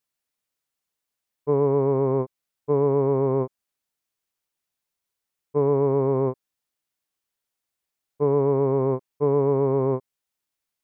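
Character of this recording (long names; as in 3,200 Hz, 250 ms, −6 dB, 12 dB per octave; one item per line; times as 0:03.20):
background noise floor −85 dBFS
spectral slope −4.0 dB per octave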